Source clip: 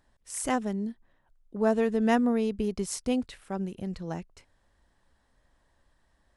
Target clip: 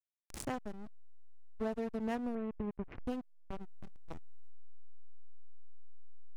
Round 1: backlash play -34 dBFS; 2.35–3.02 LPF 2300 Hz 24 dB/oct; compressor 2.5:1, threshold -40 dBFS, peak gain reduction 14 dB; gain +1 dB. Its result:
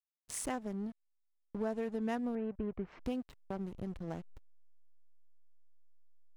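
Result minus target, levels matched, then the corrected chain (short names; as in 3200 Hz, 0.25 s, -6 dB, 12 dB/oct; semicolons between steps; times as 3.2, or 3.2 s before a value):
backlash: distortion -13 dB
backlash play -22.5 dBFS; 2.35–3.02 LPF 2300 Hz 24 dB/oct; compressor 2.5:1, threshold -40 dBFS, peak gain reduction 14 dB; gain +1 dB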